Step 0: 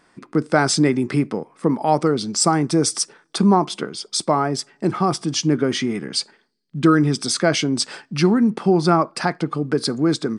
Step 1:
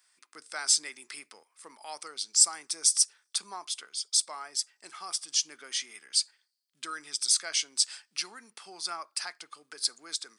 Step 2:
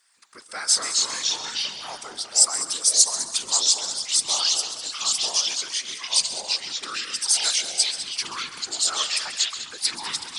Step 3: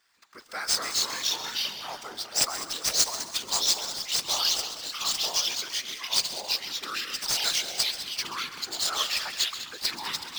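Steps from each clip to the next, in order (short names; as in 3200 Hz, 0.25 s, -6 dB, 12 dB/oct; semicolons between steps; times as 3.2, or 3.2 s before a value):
HPF 1100 Hz 6 dB/oct; differentiator
echoes that change speed 0.132 s, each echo -3 st, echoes 3; multi-head echo 67 ms, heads second and third, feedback 45%, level -13 dB; whisperiser; gain +4 dB
median filter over 5 samples; gain -1 dB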